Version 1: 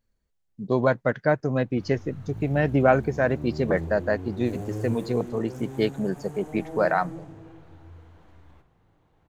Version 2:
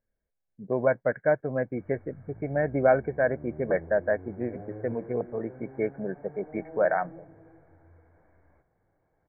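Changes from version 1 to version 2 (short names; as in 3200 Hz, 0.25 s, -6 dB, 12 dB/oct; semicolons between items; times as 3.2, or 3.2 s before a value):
background: send -7.5 dB; master: add rippled Chebyshev low-pass 2300 Hz, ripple 9 dB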